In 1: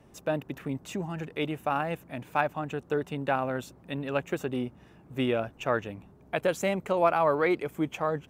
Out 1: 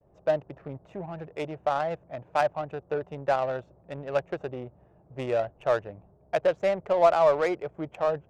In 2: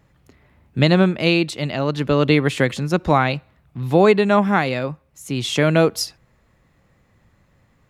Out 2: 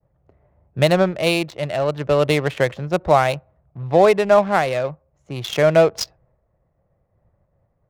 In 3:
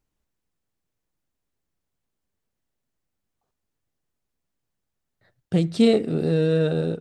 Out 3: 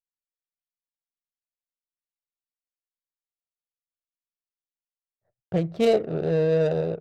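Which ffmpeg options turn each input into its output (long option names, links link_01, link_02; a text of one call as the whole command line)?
ffmpeg -i in.wav -af "agate=range=-33dB:threshold=-54dB:ratio=3:detection=peak,equalizer=frequency=250:width_type=o:width=0.67:gain=-10,equalizer=frequency=630:width_type=o:width=0.67:gain=9,equalizer=frequency=6300:width_type=o:width=0.67:gain=6,adynamicsmooth=sensitivity=2:basefreq=910,volume=-2dB" out.wav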